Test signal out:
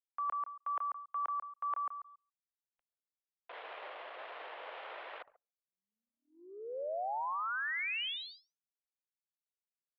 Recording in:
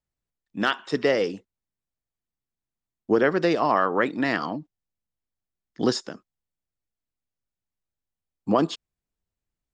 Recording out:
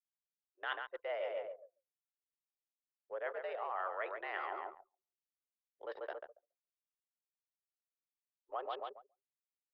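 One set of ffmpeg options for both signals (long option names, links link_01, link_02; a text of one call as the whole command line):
ffmpeg -i in.wav -filter_complex "[0:a]highshelf=frequency=2000:gain=-5.5,asplit=2[link_01][link_02];[link_02]adelay=140,lowpass=frequency=2600:poles=1,volume=-8dB,asplit=2[link_03][link_04];[link_04]adelay=140,lowpass=frequency=2600:poles=1,volume=0.32,asplit=2[link_05][link_06];[link_06]adelay=140,lowpass=frequency=2600:poles=1,volume=0.32,asplit=2[link_07][link_08];[link_08]adelay=140,lowpass=frequency=2600:poles=1,volume=0.32[link_09];[link_01][link_03][link_05][link_07][link_09]amix=inputs=5:normalize=0,areverse,acompressor=threshold=-32dB:ratio=12,areverse,highpass=frequency=440:width_type=q:width=0.5412,highpass=frequency=440:width_type=q:width=1.307,lowpass=frequency=3300:width_type=q:width=0.5176,lowpass=frequency=3300:width_type=q:width=0.7071,lowpass=frequency=3300:width_type=q:width=1.932,afreqshift=85,anlmdn=0.0251,volume=-2dB" out.wav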